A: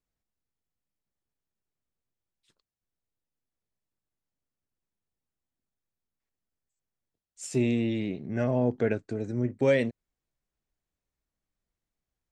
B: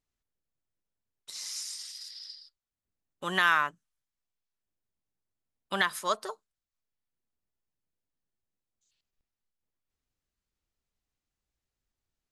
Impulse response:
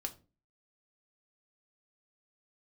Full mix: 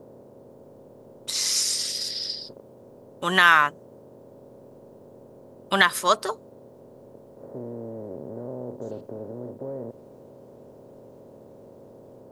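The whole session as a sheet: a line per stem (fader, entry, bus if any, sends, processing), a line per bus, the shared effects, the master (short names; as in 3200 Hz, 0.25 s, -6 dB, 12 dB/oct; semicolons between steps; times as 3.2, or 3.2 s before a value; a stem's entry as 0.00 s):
-15.0 dB, 0.00 s, no send, per-bin compression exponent 0.2; steep low-pass 1100 Hz 36 dB/oct; requantised 10-bit, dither triangular
-2.5 dB, 0.00 s, no send, AGC gain up to 16.5 dB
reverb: off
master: dry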